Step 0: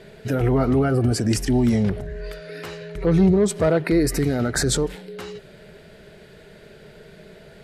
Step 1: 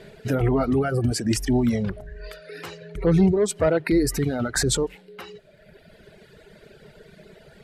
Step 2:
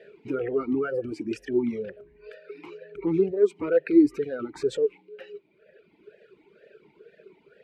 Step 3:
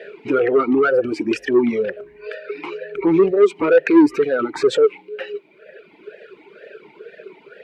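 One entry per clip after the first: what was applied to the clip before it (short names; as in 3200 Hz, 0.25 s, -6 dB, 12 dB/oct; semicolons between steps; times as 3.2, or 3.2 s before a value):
reverb removal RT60 1.6 s
vowel sweep e-u 2.1 Hz; gain +5.5 dB
overdrive pedal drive 19 dB, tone 2800 Hz, clips at -8 dBFS; gain +4.5 dB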